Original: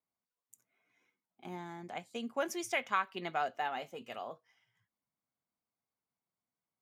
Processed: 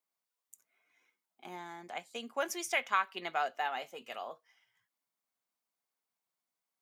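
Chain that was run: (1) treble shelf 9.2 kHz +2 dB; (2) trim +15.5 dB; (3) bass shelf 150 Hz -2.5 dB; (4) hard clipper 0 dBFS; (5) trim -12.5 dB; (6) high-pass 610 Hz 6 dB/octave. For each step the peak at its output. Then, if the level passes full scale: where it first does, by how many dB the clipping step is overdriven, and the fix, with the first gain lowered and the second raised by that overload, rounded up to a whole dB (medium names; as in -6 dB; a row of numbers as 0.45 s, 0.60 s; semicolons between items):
-18.5 dBFS, -3.0 dBFS, -3.0 dBFS, -3.0 dBFS, -15.5 dBFS, -16.5 dBFS; nothing clips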